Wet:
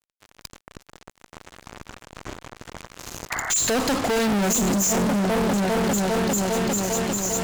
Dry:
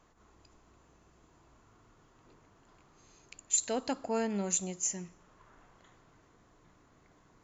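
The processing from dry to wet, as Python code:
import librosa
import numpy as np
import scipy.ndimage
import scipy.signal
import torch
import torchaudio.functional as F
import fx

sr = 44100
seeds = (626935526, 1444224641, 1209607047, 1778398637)

y = fx.echo_opening(x, sr, ms=400, hz=200, octaves=1, feedback_pct=70, wet_db=-3)
y = fx.fuzz(y, sr, gain_db=56.0, gate_db=-55.0)
y = fx.spec_paint(y, sr, seeds[0], shape='noise', start_s=3.3, length_s=0.22, low_hz=620.0, high_hz=2200.0, level_db=-23.0)
y = y * librosa.db_to_amplitude(-7.0)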